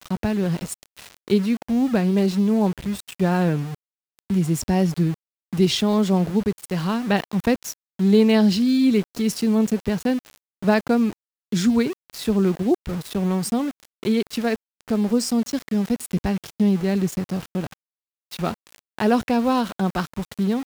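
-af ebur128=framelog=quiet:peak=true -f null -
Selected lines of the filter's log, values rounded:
Integrated loudness:
  I:         -22.1 LUFS
  Threshold: -32.4 LUFS
Loudness range:
  LRA:         4.6 LU
  Threshold: -42.4 LUFS
  LRA low:   -24.6 LUFS
  LRA high:  -20.0 LUFS
True peak:
  Peak:       -5.0 dBFS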